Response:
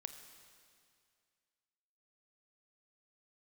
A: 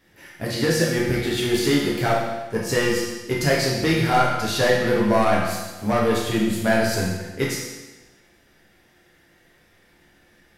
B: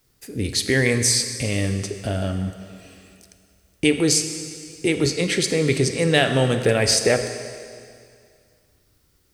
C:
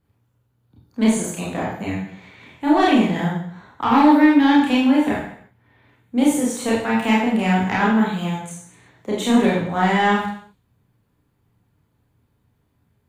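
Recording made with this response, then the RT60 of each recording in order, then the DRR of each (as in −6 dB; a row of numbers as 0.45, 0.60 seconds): B; 1.2, 2.2, 0.60 seconds; −5.5, 7.5, −5.5 decibels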